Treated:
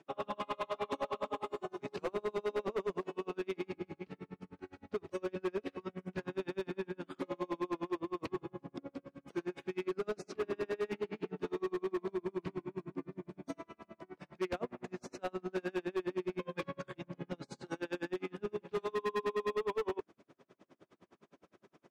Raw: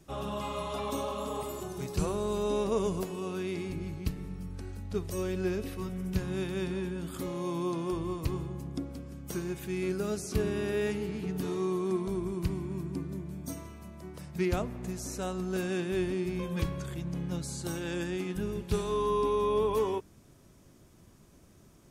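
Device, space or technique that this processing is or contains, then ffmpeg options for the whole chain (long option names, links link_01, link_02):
helicopter radio: -af "highpass=320,lowpass=2700,aeval=exprs='val(0)*pow(10,-37*(0.5-0.5*cos(2*PI*9.7*n/s))/20)':channel_layout=same,asoftclip=type=hard:threshold=-36.5dB,volume=6.5dB"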